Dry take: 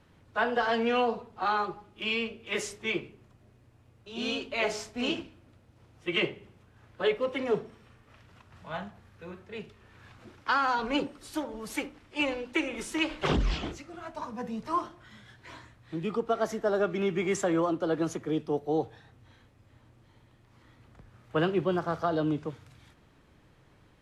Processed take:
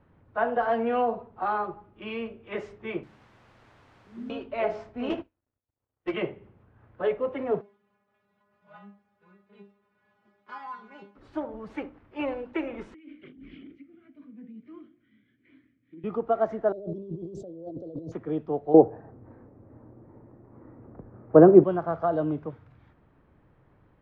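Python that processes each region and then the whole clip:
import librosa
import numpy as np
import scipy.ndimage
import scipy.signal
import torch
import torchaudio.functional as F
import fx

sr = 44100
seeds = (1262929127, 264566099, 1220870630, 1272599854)

y = fx.chain(x, sr, fx.cheby2_lowpass(hz=610.0, order=4, stop_db=40),
    fx.low_shelf(hz=86.0, db=-10.5),
    fx.quant_dither(seeds[0], bits=8, dither='triangular'), at=(3.03, 4.3))
y = fx.chain(y, sr, fx.peak_eq(hz=170.0, db=-11.5, octaves=0.61),
    fx.leveller(passes=3),
    fx.upward_expand(threshold_db=-45.0, expansion=2.5), at=(5.1, 6.14))
y = fx.envelope_flatten(y, sr, power=0.6, at=(7.6, 11.15), fade=0.02)
y = fx.highpass(y, sr, hz=110.0, slope=12, at=(7.6, 11.15), fade=0.02)
y = fx.stiff_resonator(y, sr, f0_hz=200.0, decay_s=0.29, stiffness=0.002, at=(7.6, 11.15), fade=0.02)
y = fx.chain(y, sr, fx.vowel_filter(vowel='i'),
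    fx.over_compress(threshold_db=-45.0, ratio=-1.0), at=(12.94, 16.04))
y = fx.chain(y, sr, fx.ellip_bandstop(low_hz=570.0, high_hz=4200.0, order=3, stop_db=50),
    fx.over_compress(threshold_db=-38.0, ratio=-1.0), at=(16.72, 18.12))
y = fx.chain(y, sr, fx.moving_average(points=13),
    fx.peak_eq(hz=360.0, db=15.0, octaves=2.8), at=(18.74, 21.64))
y = scipy.signal.sosfilt(scipy.signal.butter(2, 1500.0, 'lowpass', fs=sr, output='sos'), y)
y = fx.dynamic_eq(y, sr, hz=660.0, q=3.8, threshold_db=-46.0, ratio=4.0, max_db=6)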